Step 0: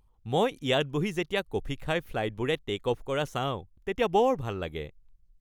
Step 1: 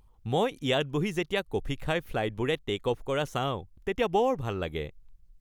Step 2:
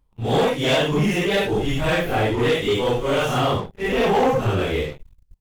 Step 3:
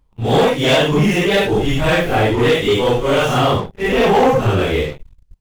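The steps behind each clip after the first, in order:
compression 1.5:1, threshold -38 dBFS, peak gain reduction 7 dB; trim +5 dB
phase randomisation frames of 200 ms; waveshaping leveller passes 3
median filter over 3 samples; trim +5.5 dB

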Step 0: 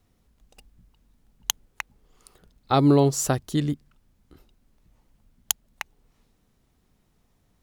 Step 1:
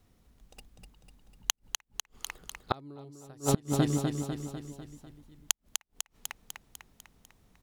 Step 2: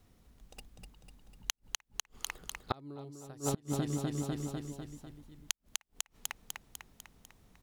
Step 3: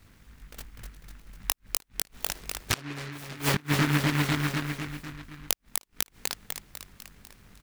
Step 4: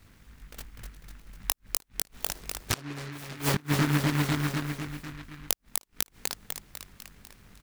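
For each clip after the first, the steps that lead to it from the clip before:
feedback delay 249 ms, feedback 56%, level -5.5 dB; inverted gate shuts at -13 dBFS, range -31 dB; trim +1 dB
compression 6:1, threshold -31 dBFS, peak gain reduction 12 dB; trim +1 dB
doubling 20 ms -2.5 dB; delay time shaken by noise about 1.6 kHz, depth 0.36 ms; trim +6.5 dB
dynamic bell 2.4 kHz, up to -4 dB, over -43 dBFS, Q 0.76

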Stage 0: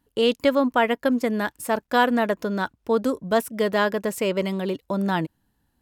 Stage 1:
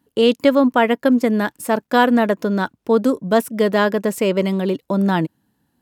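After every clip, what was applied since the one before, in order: high-pass 180 Hz 12 dB/octave; bass shelf 270 Hz +10 dB; trim +3 dB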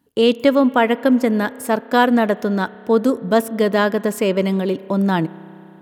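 reverberation RT60 3.4 s, pre-delay 31 ms, DRR 18.5 dB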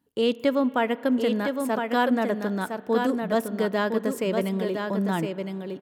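delay 1011 ms -5.5 dB; trim -8.5 dB

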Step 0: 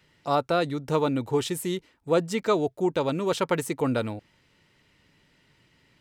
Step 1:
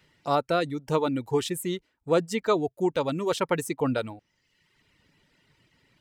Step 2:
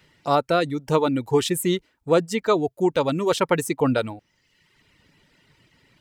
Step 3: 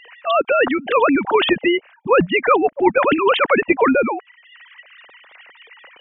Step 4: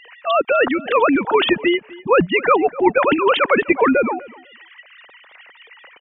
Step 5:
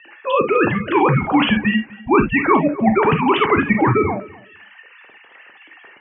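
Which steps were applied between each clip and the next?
reverb removal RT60 0.91 s
gain riding within 4 dB 0.5 s; trim +5 dB
formants replaced by sine waves; spectrum-flattening compressor 2:1; trim +4.5 dB
feedback delay 250 ms, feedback 16%, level -21 dB
mistuned SSB -140 Hz 230–3300 Hz; gated-style reverb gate 90 ms flat, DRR 4 dB; trim -1 dB

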